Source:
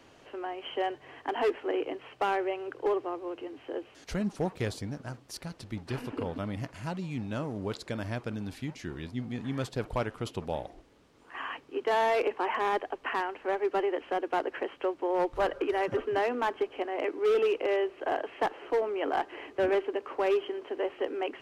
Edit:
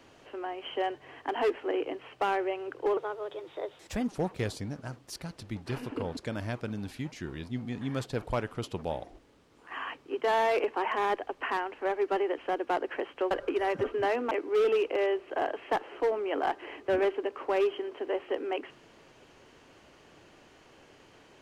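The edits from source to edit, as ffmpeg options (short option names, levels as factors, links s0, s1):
-filter_complex "[0:a]asplit=6[s0][s1][s2][s3][s4][s5];[s0]atrim=end=2.974[s6];[s1]atrim=start=2.97:end=4.29,asetpts=PTS-STARTPTS,asetrate=52479,aresample=44100[s7];[s2]atrim=start=4.286:end=6.382[s8];[s3]atrim=start=7.798:end=14.942[s9];[s4]atrim=start=15.438:end=16.442[s10];[s5]atrim=start=17.008[s11];[s6][s7]acrossfade=d=0.004:c1=hsin:c2=hsin[s12];[s12][s8]acrossfade=d=0.004:c1=hsin:c2=hsin[s13];[s13][s9]acrossfade=d=0.004:c1=hsin:c2=hsin[s14];[s14][s10]acrossfade=d=0.004:c1=hsin:c2=hsin[s15];[s15][s11]acrossfade=d=0.004:c1=hsin:c2=hsin"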